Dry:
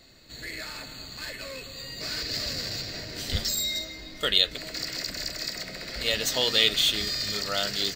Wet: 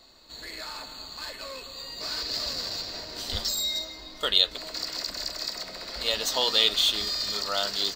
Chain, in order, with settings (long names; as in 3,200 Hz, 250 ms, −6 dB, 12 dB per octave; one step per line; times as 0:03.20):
octave-band graphic EQ 125/1,000/2,000/4,000 Hz −10/+11/−6/+5 dB
level −3 dB